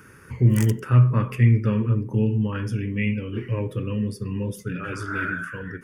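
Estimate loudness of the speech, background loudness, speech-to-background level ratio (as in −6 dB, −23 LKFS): −23.0 LKFS, −39.0 LKFS, 16.0 dB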